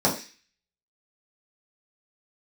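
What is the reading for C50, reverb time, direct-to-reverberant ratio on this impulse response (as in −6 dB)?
9.5 dB, 0.35 s, −6.0 dB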